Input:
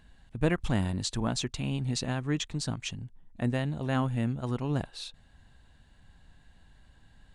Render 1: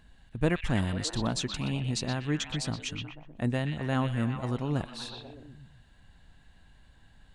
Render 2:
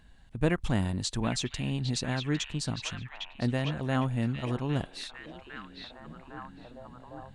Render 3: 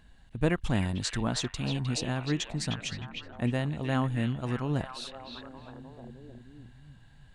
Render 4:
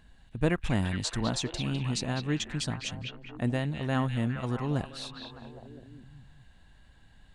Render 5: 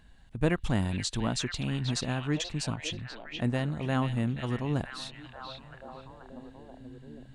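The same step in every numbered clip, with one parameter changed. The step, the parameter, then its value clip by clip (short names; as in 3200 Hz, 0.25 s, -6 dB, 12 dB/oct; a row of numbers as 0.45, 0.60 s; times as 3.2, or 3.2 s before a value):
delay with a stepping band-pass, time: 0.123, 0.806, 0.308, 0.204, 0.483 s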